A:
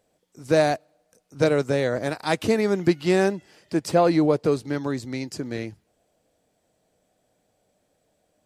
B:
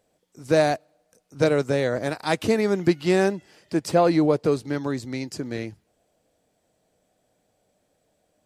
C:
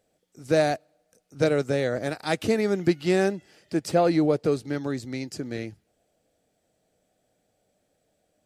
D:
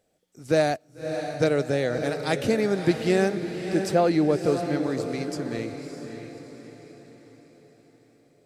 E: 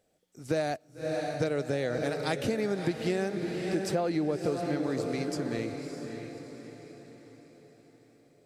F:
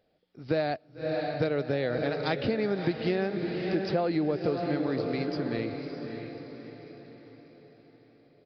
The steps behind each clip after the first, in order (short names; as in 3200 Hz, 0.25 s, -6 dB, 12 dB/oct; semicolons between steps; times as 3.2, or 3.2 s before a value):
nothing audible
bell 1000 Hz -8.5 dB 0.25 oct; gain -2 dB
diffused feedback echo 0.601 s, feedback 46%, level -7.5 dB
compressor 6:1, threshold -24 dBFS, peak gain reduction 9 dB; gain -1.5 dB
downsampling 11025 Hz; gain +1.5 dB